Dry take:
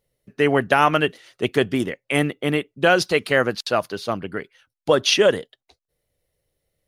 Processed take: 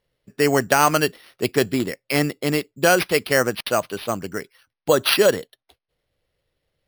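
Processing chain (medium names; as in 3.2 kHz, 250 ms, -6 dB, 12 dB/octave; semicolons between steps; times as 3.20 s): sample-and-hold 6×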